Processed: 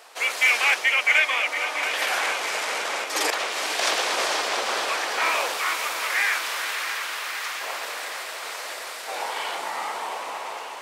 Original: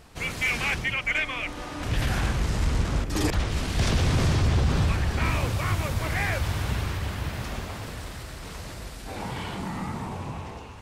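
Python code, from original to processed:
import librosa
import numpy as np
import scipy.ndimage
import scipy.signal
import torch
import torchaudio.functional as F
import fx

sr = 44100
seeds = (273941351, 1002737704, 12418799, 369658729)

y = fx.highpass(x, sr, hz=fx.steps((0.0, 520.0), (5.57, 1100.0), (7.61, 520.0)), slope=24)
y = fx.echo_heads(y, sr, ms=228, heads='second and third', feedback_pct=71, wet_db=-11.5)
y = F.gain(torch.from_numpy(y), 7.0).numpy()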